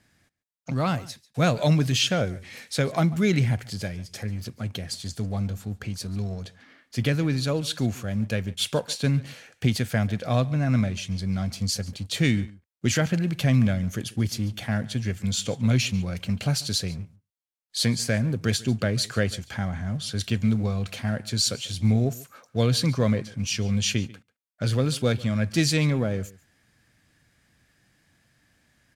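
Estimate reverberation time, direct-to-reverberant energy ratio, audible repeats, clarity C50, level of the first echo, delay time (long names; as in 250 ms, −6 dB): no reverb audible, no reverb audible, 1, no reverb audible, −21.0 dB, 142 ms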